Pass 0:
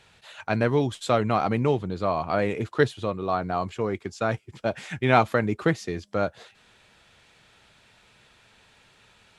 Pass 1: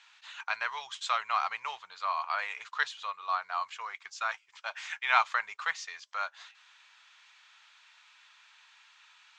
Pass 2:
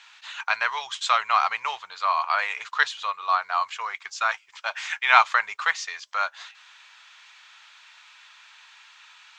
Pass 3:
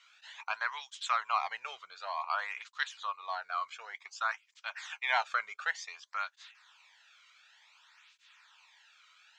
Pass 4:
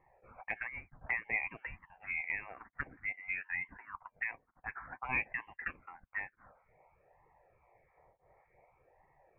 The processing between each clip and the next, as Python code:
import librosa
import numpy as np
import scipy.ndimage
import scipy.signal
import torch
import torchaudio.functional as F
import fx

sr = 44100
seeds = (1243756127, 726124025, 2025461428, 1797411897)

y1 = scipy.signal.sosfilt(scipy.signal.ellip(3, 1.0, 50, [1000.0, 6800.0], 'bandpass', fs=sr, output='sos'), x)
y2 = fx.peak_eq(y1, sr, hz=160.0, db=-6.0, octaves=0.42)
y2 = y2 * 10.0 ** (8.5 / 20.0)
y3 = fx.flanger_cancel(y2, sr, hz=0.55, depth_ms=1.2)
y3 = y3 * 10.0 ** (-8.0 / 20.0)
y4 = fx.freq_invert(y3, sr, carrier_hz=3200)
y4 = fx.env_phaser(y4, sr, low_hz=240.0, high_hz=1400.0, full_db=-31.5)